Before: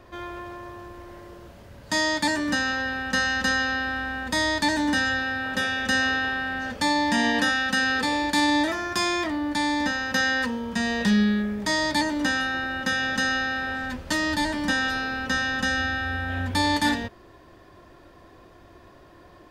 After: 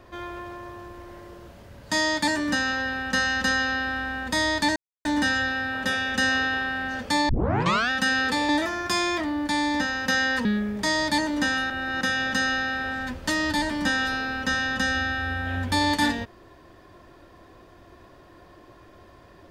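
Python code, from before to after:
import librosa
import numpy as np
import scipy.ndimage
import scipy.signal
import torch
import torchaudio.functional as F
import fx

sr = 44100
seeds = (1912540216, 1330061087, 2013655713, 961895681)

y = fx.edit(x, sr, fx.insert_silence(at_s=4.76, length_s=0.29),
    fx.tape_start(start_s=7.0, length_s=0.61),
    fx.cut(start_s=8.2, length_s=0.35),
    fx.cut(start_s=10.51, length_s=0.77),
    fx.reverse_span(start_s=12.53, length_s=0.31), tone=tone)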